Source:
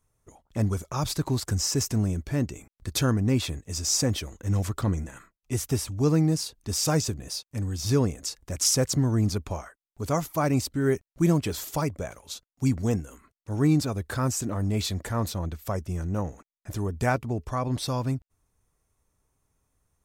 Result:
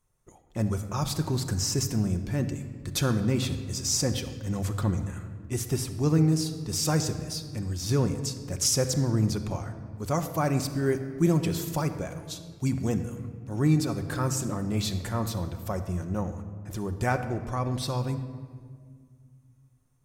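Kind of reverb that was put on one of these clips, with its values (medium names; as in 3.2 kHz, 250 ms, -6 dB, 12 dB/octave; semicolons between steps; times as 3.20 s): simulated room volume 2900 m³, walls mixed, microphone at 0.94 m; trim -2 dB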